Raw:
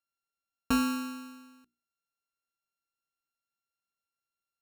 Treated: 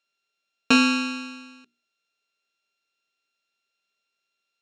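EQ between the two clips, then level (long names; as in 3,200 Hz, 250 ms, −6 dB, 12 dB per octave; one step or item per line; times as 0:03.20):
loudspeaker in its box 150–6,500 Hz, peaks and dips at 230 Hz +4 dB, 410 Hz +9 dB, 620 Hz +7 dB, 1,600 Hz +3 dB, 2,500 Hz +10 dB, 3,600 Hz +7 dB
high-shelf EQ 2,800 Hz +9 dB
+5.0 dB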